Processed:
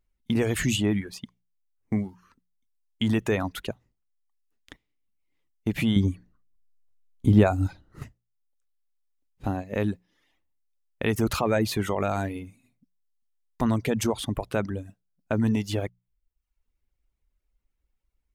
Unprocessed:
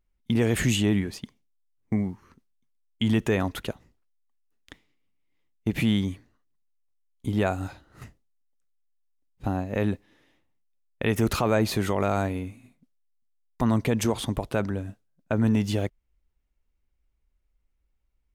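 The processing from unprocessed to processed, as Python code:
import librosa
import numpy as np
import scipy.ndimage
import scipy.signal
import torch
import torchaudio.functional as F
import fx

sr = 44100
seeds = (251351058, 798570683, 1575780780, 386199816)

y = fx.hum_notches(x, sr, base_hz=60, count=3)
y = fx.dereverb_blind(y, sr, rt60_s=0.65)
y = fx.low_shelf(y, sr, hz=440.0, db=11.5, at=(5.96, 8.03))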